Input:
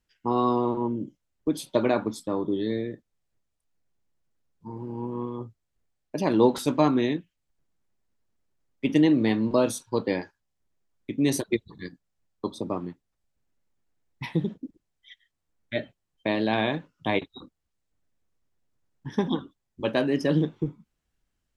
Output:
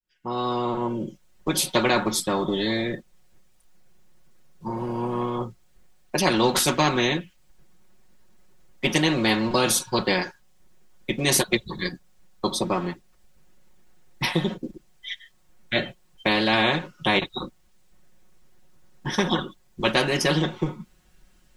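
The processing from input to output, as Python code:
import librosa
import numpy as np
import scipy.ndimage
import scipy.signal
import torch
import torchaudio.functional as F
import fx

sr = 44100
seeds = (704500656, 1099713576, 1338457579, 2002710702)

y = fx.fade_in_head(x, sr, length_s=1.35)
y = y + 0.91 * np.pad(y, (int(5.5 * sr / 1000.0), 0))[:len(y)]
y = fx.spectral_comp(y, sr, ratio=2.0)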